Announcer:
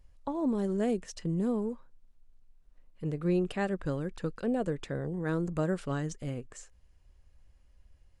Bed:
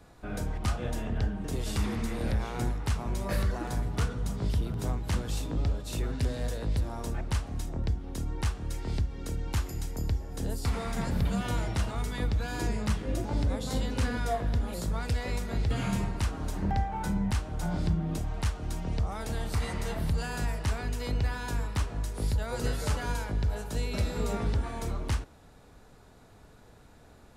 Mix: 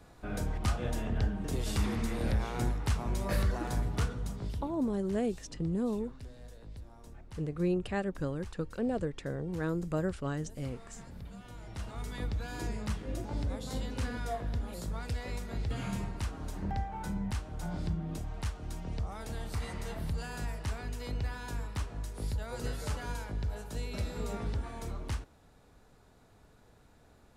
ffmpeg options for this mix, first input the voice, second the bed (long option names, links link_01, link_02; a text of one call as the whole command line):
ffmpeg -i stem1.wav -i stem2.wav -filter_complex "[0:a]adelay=4350,volume=-2dB[link_01];[1:a]volume=11dB,afade=type=out:start_time=3.86:duration=0.96:silence=0.141254,afade=type=in:start_time=11.58:duration=0.54:silence=0.251189[link_02];[link_01][link_02]amix=inputs=2:normalize=0" out.wav